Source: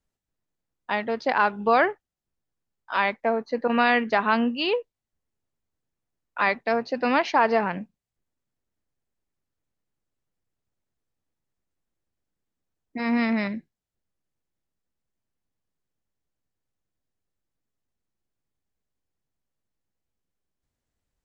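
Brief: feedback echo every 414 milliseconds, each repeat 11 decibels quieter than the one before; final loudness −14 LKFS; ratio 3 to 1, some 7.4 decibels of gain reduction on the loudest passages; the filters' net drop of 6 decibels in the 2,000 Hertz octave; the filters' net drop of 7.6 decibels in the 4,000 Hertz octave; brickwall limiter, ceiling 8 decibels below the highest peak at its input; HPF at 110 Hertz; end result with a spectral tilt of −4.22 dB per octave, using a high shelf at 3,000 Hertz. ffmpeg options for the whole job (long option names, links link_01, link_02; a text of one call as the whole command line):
ffmpeg -i in.wav -af "highpass=110,equalizer=frequency=2000:width_type=o:gain=-5.5,highshelf=frequency=3000:gain=-3.5,equalizer=frequency=4000:width_type=o:gain=-5.5,acompressor=threshold=-26dB:ratio=3,alimiter=limit=-23dB:level=0:latency=1,aecho=1:1:414|828|1242:0.282|0.0789|0.0221,volume=20dB" out.wav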